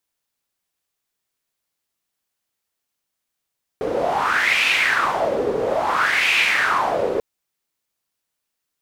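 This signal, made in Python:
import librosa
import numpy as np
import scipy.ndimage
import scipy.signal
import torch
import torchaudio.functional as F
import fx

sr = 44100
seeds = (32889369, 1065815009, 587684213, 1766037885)

y = fx.wind(sr, seeds[0], length_s=3.39, low_hz=440.0, high_hz=2500.0, q=5.0, gusts=2, swing_db=4.0)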